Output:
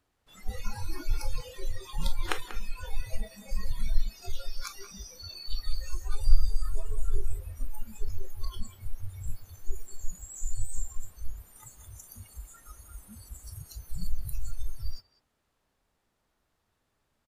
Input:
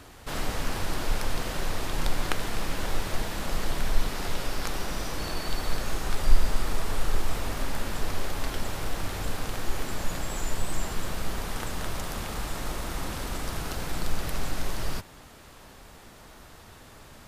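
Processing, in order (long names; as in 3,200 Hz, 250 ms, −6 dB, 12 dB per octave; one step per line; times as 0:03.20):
noise reduction from a noise print of the clip's start 28 dB
far-end echo of a speakerphone 190 ms, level −11 dB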